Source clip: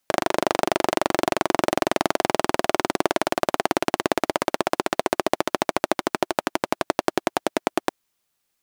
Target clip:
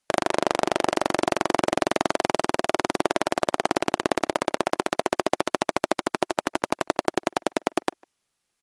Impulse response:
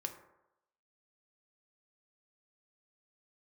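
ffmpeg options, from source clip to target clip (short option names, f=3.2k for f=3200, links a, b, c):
-filter_complex "[0:a]asettb=1/sr,asplit=3[a][b][c];[a]atrim=end=6.404[d];[b]atrim=start=6.4:end=6.84,asetpts=PTS-STARTPTS,afade=t=in:d=0.004:c=qsin,afade=t=out:st=0.436:d=0.004:c=qsin,acrusher=bits=2:mode=log:mix=0:aa=0.000001[e];[c]atrim=start=6.836[f];[d][e]acrossfade=d=0.004:c1=hsin:c2=qsin[g];[g][f]acrossfade=d=0.004:c1=qsin:c2=hsin,asplit=2[h][i];[i]adelay=150,highpass=300,lowpass=3.4k,asoftclip=type=hard:threshold=-10.5dB,volume=-26dB[j];[h][j]amix=inputs=2:normalize=0,volume=-1dB" -ar 24000 -c:a aac -b:a 48k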